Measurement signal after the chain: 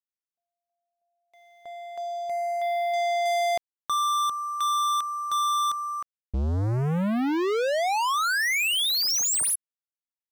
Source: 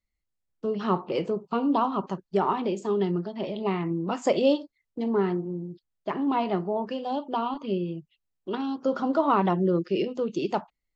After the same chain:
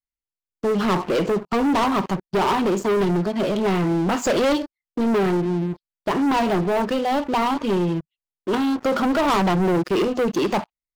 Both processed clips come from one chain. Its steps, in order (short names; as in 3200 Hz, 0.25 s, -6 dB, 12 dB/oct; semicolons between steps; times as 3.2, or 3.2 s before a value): sample leveller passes 5; gain -5.5 dB